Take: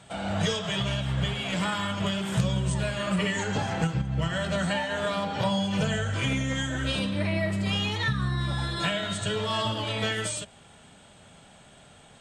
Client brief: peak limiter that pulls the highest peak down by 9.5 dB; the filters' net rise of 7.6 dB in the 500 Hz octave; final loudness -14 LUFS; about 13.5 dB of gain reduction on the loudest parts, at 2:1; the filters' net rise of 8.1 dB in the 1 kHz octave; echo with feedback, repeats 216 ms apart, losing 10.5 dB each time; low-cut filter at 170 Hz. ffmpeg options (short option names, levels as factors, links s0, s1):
-af "highpass=170,equalizer=f=500:t=o:g=7,equalizer=f=1000:t=o:g=8,acompressor=threshold=0.00708:ratio=2,alimiter=level_in=2.66:limit=0.0631:level=0:latency=1,volume=0.376,aecho=1:1:216|432|648:0.299|0.0896|0.0269,volume=21.1"